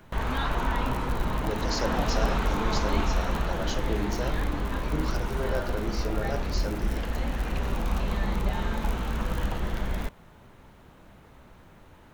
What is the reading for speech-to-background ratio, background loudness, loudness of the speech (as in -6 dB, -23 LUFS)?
-4.5 dB, -30.5 LUFS, -35.0 LUFS